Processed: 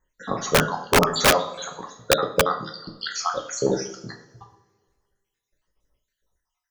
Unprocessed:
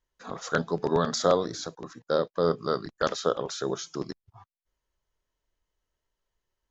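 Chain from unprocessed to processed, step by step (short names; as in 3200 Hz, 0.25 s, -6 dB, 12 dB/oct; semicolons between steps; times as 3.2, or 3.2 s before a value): random spectral dropouts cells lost 69%; two-slope reverb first 0.47 s, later 1.7 s, from -18 dB, DRR 1.5 dB; wrapped overs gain 17 dB; gain +8.5 dB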